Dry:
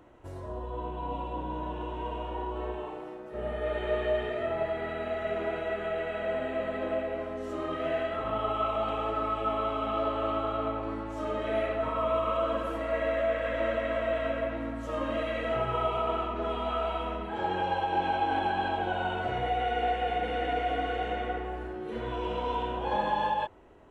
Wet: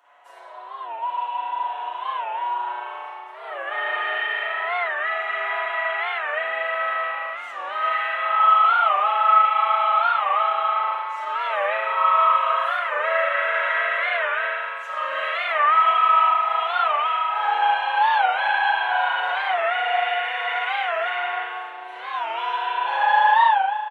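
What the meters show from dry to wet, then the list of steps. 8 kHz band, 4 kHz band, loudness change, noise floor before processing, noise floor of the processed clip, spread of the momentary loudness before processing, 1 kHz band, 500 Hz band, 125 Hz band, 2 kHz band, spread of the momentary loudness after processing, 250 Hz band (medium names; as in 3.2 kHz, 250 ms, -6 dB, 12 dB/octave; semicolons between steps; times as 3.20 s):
no reading, +10.5 dB, +10.0 dB, -40 dBFS, -37 dBFS, 7 LU, +12.0 dB, -0.5 dB, under -40 dB, +15.0 dB, 13 LU, under -20 dB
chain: high-pass 780 Hz 24 dB/octave; dynamic bell 1.7 kHz, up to +5 dB, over -45 dBFS, Q 1.3; comb 7.1 ms; spring tank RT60 1.6 s, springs 35 ms, chirp 25 ms, DRR -9 dB; warped record 45 rpm, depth 160 cents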